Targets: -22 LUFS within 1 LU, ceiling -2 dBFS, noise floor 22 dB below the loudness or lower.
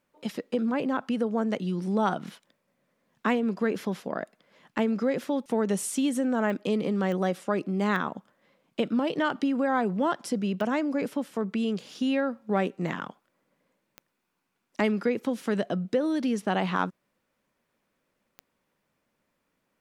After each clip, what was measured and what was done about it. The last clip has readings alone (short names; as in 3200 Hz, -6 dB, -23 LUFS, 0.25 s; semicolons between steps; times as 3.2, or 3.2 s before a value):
clicks 6; loudness -28.5 LUFS; peak -11.5 dBFS; loudness target -22.0 LUFS
-> de-click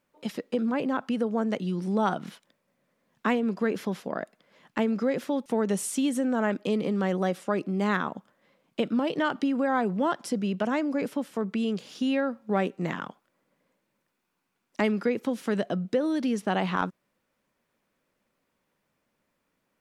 clicks 0; loudness -28.5 LUFS; peak -11.5 dBFS; loudness target -22.0 LUFS
-> gain +6.5 dB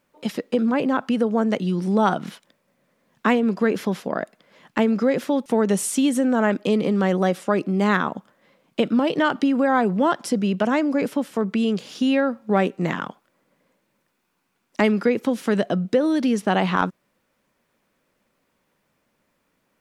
loudness -22.0 LUFS; peak -5.0 dBFS; noise floor -71 dBFS